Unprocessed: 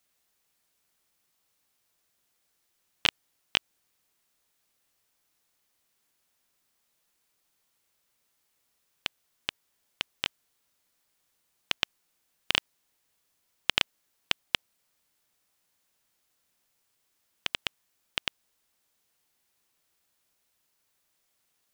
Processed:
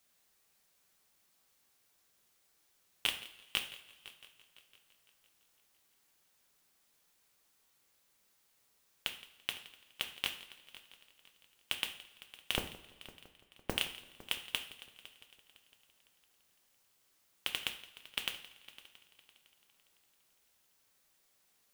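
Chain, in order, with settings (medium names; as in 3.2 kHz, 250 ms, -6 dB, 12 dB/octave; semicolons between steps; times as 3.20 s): in parallel at +1.5 dB: peak limiter -11.5 dBFS, peak gain reduction 10.5 dB; on the sum: saturation -8.5 dBFS, distortion -10 dB; 12.57–13.72 s: frequency inversion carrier 3.2 kHz; on a send: multi-head delay 169 ms, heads first and third, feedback 51%, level -19 dB; on the sum: two-slope reverb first 0.48 s, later 2.4 s, from -20 dB, DRR 5 dB; modulation noise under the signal 10 dB; trim -6.5 dB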